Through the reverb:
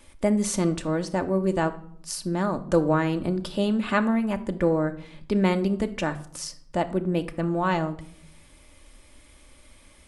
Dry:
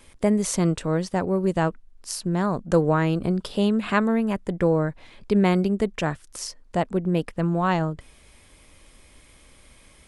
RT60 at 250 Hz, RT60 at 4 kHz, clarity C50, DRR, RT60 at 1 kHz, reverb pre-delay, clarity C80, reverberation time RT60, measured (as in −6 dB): 0.95 s, 0.45 s, 15.5 dB, 6.5 dB, 0.55 s, 3 ms, 19.0 dB, 0.60 s